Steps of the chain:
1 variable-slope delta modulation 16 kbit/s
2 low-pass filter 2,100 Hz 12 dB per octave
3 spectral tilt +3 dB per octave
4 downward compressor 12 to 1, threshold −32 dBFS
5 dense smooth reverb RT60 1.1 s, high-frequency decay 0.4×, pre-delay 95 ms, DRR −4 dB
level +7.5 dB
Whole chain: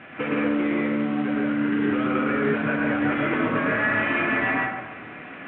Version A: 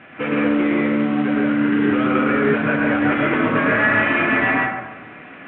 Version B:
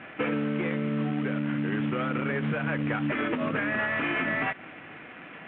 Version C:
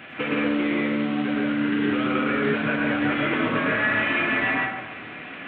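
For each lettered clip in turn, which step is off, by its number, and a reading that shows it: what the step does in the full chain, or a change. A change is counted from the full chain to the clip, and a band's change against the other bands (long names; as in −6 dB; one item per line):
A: 4, average gain reduction 4.5 dB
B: 5, change in momentary loudness spread +7 LU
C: 2, 2 kHz band +1.5 dB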